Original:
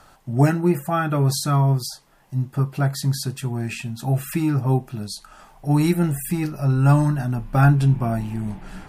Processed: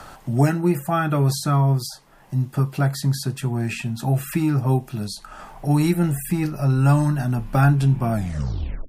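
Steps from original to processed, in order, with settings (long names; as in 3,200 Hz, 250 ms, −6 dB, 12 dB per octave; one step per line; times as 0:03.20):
turntable brake at the end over 0.76 s
multiband upward and downward compressor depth 40%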